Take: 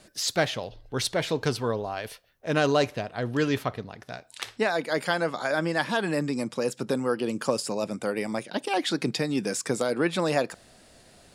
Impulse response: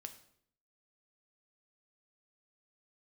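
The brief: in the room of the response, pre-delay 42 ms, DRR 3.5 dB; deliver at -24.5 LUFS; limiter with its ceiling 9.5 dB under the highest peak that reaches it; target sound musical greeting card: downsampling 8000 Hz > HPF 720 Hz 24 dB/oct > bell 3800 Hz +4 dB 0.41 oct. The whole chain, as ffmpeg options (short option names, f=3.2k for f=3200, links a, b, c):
-filter_complex "[0:a]alimiter=limit=-19dB:level=0:latency=1,asplit=2[a][b];[1:a]atrim=start_sample=2205,adelay=42[c];[b][c]afir=irnorm=-1:irlink=0,volume=1.5dB[d];[a][d]amix=inputs=2:normalize=0,aresample=8000,aresample=44100,highpass=f=720:w=0.5412,highpass=f=720:w=1.3066,equalizer=f=3.8k:t=o:w=0.41:g=4,volume=10.5dB"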